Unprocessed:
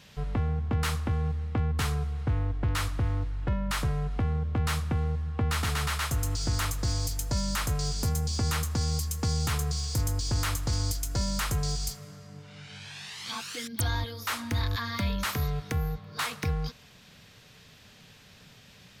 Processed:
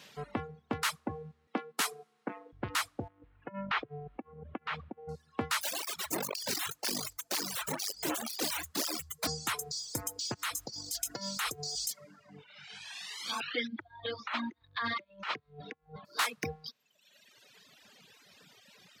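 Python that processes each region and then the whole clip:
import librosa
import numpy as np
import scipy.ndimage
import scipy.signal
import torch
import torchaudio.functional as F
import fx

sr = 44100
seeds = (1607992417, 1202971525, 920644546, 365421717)

y = fx.chain(x, sr, fx.steep_highpass(hz=180.0, slope=36),
    fx.peak_eq(hz=11000.0, db=5.5, octaves=1.6), at=(1.47, 2.53))
y = fx.chain(y, sr, fx.lowpass(hz=3100.0, slope=24),
    fx.over_compress(threshold_db=-30.0, ratio=-0.5), at=(3.08, 5.09))
y = fx.chain(y, sr, fx.overflow_wrap(gain_db=24.0),
    fx.flanger_cancel(hz=2.0, depth_ms=5.3), at=(5.61, 9.27))
y = fx.chain(y, sr, fx.peak_eq(hz=4000.0, db=3.0, octaves=2.2),
    fx.over_compress(threshold_db=-31.0, ratio=-1.0), at=(10.34, 12.44))
y = fx.chain(y, sr, fx.lowpass(hz=3700.0, slope=24),
    fx.over_compress(threshold_db=-35.0, ratio=-0.5), at=(13.4, 16.05))
y = fx.dereverb_blind(y, sr, rt60_s=1.9)
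y = scipy.signal.sosfilt(scipy.signal.butter(2, 260.0, 'highpass', fs=sr, output='sos'), y)
y = fx.dereverb_blind(y, sr, rt60_s=1.0)
y = F.gain(torch.from_numpy(y), 1.5).numpy()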